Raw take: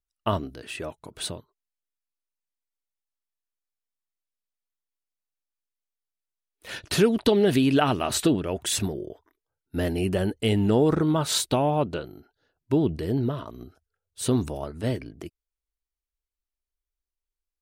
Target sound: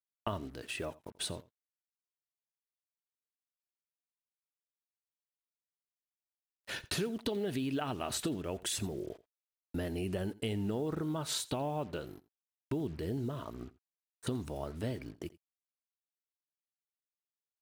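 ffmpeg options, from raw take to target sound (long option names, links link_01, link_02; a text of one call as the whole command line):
ffmpeg -i in.wav -filter_complex "[0:a]asettb=1/sr,asplit=3[link_01][link_02][link_03];[link_01]atrim=end=13.544[link_04];[link_02]atrim=start=13.54:end=14.27,asetpts=PTS-STARTPTS,afade=type=in:duration=0.004:curve=qsin,afade=type=out:start_time=0.726:duration=0.004:curve=qsin,highshelf=frequency=2200:width_type=q:width=3:gain=-11.5[link_05];[link_03]atrim=start=14.266[link_06];[link_04][link_05]acrossfade=duration=0.004:curve1=hsin:curve2=qsin[link_07];[link_07][link_06]acrossfade=duration=0.004:curve1=qsin:curve2=hsin,agate=range=-24dB:threshold=-42dB:ratio=16:detection=peak,acompressor=threshold=-31dB:ratio=4,acrusher=bits=8:mix=0:aa=0.5,aecho=1:1:85:0.0944,volume=-3dB" out.wav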